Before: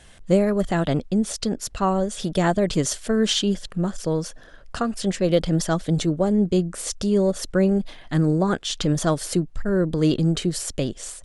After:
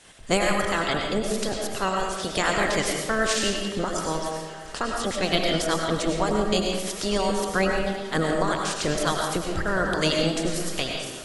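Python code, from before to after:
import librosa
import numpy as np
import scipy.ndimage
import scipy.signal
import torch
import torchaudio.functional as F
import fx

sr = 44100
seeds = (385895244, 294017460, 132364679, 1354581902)

y = fx.spec_clip(x, sr, under_db=22)
y = fx.dereverb_blind(y, sr, rt60_s=1.5)
y = fx.echo_thinned(y, sr, ms=348, feedback_pct=81, hz=190.0, wet_db=-19.0)
y = fx.rev_freeverb(y, sr, rt60_s=1.1, hf_ratio=0.75, predelay_ms=60, drr_db=0.5)
y = fx.end_taper(y, sr, db_per_s=140.0)
y = F.gain(torch.from_numpy(y), -3.5).numpy()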